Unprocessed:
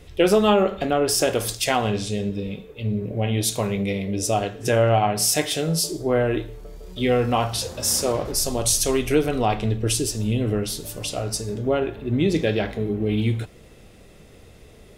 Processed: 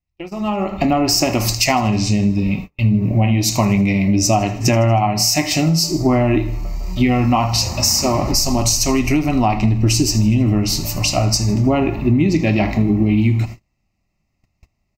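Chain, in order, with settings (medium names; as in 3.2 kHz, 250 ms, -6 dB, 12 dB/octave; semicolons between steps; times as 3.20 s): dynamic bell 310 Hz, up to +7 dB, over -33 dBFS, Q 1; static phaser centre 2.3 kHz, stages 8; compression 8:1, threshold -27 dBFS, peak gain reduction 13 dB; feedback delay 79 ms, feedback 54%, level -19 dB; level rider gain up to 16 dB; gate -26 dBFS, range -36 dB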